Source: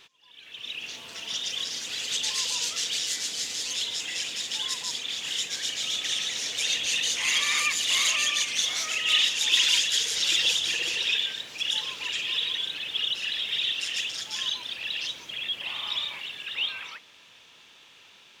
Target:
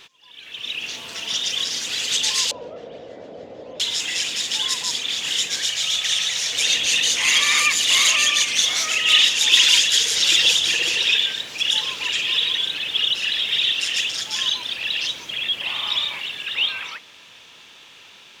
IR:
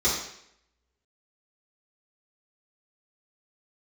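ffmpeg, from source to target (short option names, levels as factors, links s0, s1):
-filter_complex "[0:a]asettb=1/sr,asplit=3[s0][s1][s2];[s0]atrim=end=2.514[s3];[s1]atrim=start=2.51:end=3.8,asetpts=PTS-STARTPTS,afade=t=in:d=0.004:c=qsin,afade=t=out:st=1.286:d=0.004:c=qsin,lowpass=f=590:t=q:w=4.5[s4];[s2]atrim=start=3.796[s5];[s3][s4]acrossfade=d=0.004:c1=hsin:c2=qsin[s6];[s6][s5]acrossfade=d=0.004:c1=qsin:c2=hsin,asettb=1/sr,asplit=3[s7][s8][s9];[s7]atrim=end=5.654[s10];[s8]atrim=start=5.65:end=6.53,asetpts=PTS-STARTPTS,afade=t=in:d=0.004:c=qsin,afade=t=out:st=0.876:d=0.004:c=qsin,equalizer=f=300:w=1.7:g=-15[s11];[s9]atrim=start=6.526[s12];[s10][s11]acrossfade=d=0.004:c1=hsin:c2=qsin[s13];[s13][s12]acrossfade=d=0.004:c1=qsin:c2=hsin,volume=2.37"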